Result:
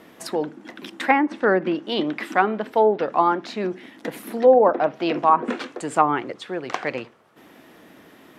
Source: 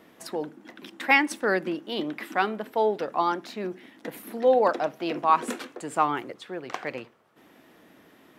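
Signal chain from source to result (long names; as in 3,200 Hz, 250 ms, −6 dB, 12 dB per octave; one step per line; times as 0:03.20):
treble cut that deepens with the level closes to 1,000 Hz, closed at −18 dBFS
level +6.5 dB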